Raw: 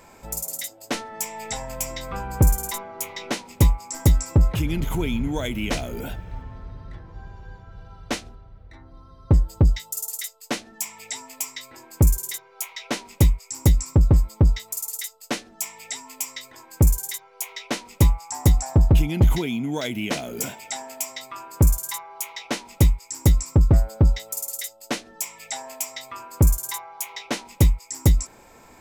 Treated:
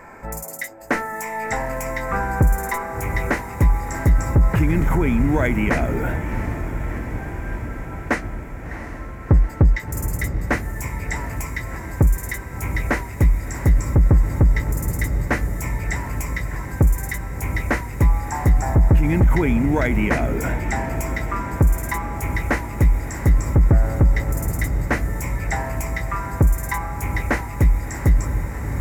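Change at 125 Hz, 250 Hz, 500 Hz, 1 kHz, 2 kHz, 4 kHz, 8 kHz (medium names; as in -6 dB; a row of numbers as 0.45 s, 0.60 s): +2.5 dB, +4.5 dB, +5.0 dB, +8.0 dB, +10.0 dB, -8.5 dB, -6.0 dB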